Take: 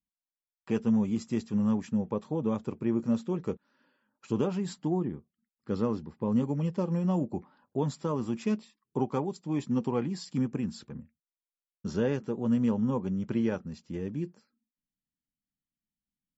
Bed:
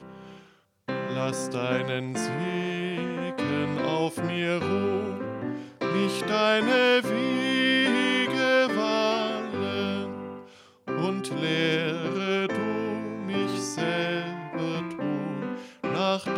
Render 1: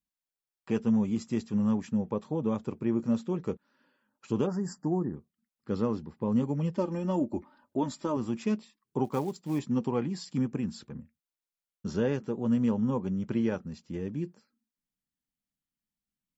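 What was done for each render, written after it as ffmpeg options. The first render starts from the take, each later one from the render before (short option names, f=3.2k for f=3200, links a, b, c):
-filter_complex "[0:a]asplit=3[a][b][c];[a]afade=t=out:st=4.46:d=0.02[d];[b]asuperstop=centerf=3000:order=20:qfactor=1.1,afade=t=in:st=4.46:d=0.02,afade=t=out:st=5.15:d=0.02[e];[c]afade=t=in:st=5.15:d=0.02[f];[d][e][f]amix=inputs=3:normalize=0,asettb=1/sr,asplit=3[g][h][i];[g]atrim=end=6.754[j];[h]atrim=start=6.75:end=8.17,asetpts=PTS-STARTPTS,afade=t=in:d=0.004:c=qsin,afade=t=out:st=1.416:d=0.004:c=qsin,aecho=1:1:3.3:0.65,atrim=end_sample=62622[k];[i]atrim=start=8.166[l];[j][k]acrossfade=d=0.004:c1=hsin:c2=qsin[m];[m][l]acrossfade=d=0.004:c1=qsin:c2=hsin,asplit=3[n][o][p];[n]afade=t=out:st=9.04:d=0.02[q];[o]acrusher=bits=6:mode=log:mix=0:aa=0.000001,afade=t=in:st=9.04:d=0.02,afade=t=out:st=9.58:d=0.02[r];[p]afade=t=in:st=9.58:d=0.02[s];[q][r][s]amix=inputs=3:normalize=0"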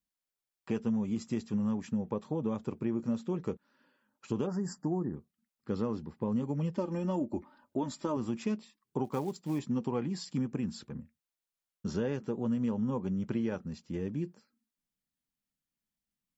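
-af "acompressor=threshold=-29dB:ratio=3"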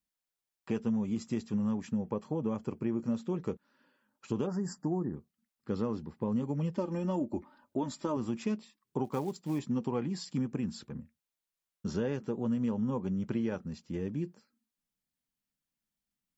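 -filter_complex "[0:a]asettb=1/sr,asplit=3[a][b][c];[a]atrim=end=2.034[d];[b]atrim=start=2.03:end=3.12,asetpts=PTS-STARTPTS,afade=t=in:d=0.004:c=qsin,afade=t=out:st=1.086:d=0.004:c=qsin,asuperstop=centerf=3700:order=4:qfactor=6.4[e];[c]atrim=start=3.116[f];[d][e]acrossfade=d=0.004:c1=hsin:c2=qsin[g];[g][f]acrossfade=d=0.004:c1=qsin:c2=hsin"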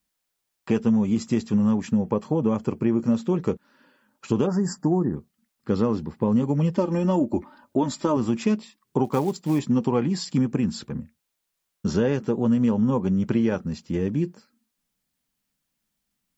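-af "volume=10.5dB"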